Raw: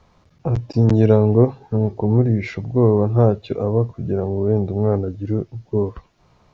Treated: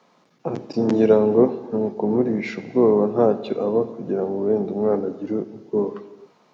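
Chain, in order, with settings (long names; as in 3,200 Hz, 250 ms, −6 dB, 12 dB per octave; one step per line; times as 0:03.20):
sub-octave generator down 2 octaves, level −1 dB
high-pass filter 210 Hz 24 dB per octave
reverb whose tail is shaped and stops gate 470 ms falling, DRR 11 dB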